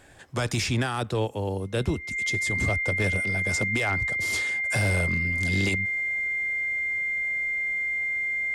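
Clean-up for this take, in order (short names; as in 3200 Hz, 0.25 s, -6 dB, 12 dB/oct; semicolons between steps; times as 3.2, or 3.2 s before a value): clip repair -18 dBFS; notch 2100 Hz, Q 30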